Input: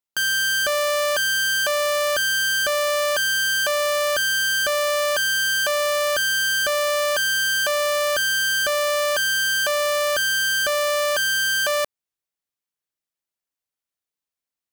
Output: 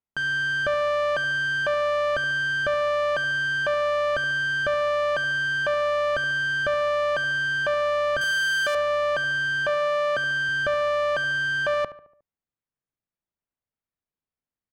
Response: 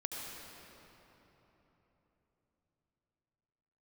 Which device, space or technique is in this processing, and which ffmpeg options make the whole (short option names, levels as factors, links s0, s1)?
through cloth: -filter_complex "[0:a]lowpass=8000,highshelf=f=3400:g=-15.5,asettb=1/sr,asplit=3[s0][s1][s2];[s0]atrim=end=8.214[s3];[s1]atrim=start=8.21:end=8.75,asetpts=PTS-STARTPTS,afade=t=in:d=0.004:c=qsin,afade=t=out:st=0.536:d=0.004:c=qsin,aemphasis=mode=production:type=riaa[s4];[s2]atrim=start=8.746[s5];[s3][s4]acrossfade=d=0.004:c1=hsin:c2=qsin[s6];[s6][s5]acrossfade=d=0.004:c1=qsin:c2=hsin,asettb=1/sr,asplit=3[s7][s8][s9];[s7]atrim=end=9.694[s10];[s8]atrim=start=9.69:end=10.49,asetpts=PTS-STARTPTS,afade=t=in:d=0.004:c=qsin,afade=t=out:st=0.796:d=0.004:c=qsin,highpass=f=110:w=0.5412,highpass=f=110:w=1.3066[s11];[s9]atrim=start=10.486[s12];[s10][s11]acrossfade=d=0.004:c1=hsin:c2=qsin[s13];[s13][s12]acrossfade=d=0.004:c1=qsin:c2=hsin,bass=f=250:g=8,treble=f=4000:g=-8,asplit=2[s14][s15];[s15]adelay=72,lowpass=f=2000:p=1,volume=0.2,asplit=2[s16][s17];[s17]adelay=72,lowpass=f=2000:p=1,volume=0.51,asplit=2[s18][s19];[s19]adelay=72,lowpass=f=2000:p=1,volume=0.51,asplit=2[s20][s21];[s21]adelay=72,lowpass=f=2000:p=1,volume=0.51,asplit=2[s22][s23];[s23]adelay=72,lowpass=f=2000:p=1,volume=0.51[s24];[s14][s16][s18][s20][s22][s24]amix=inputs=6:normalize=0"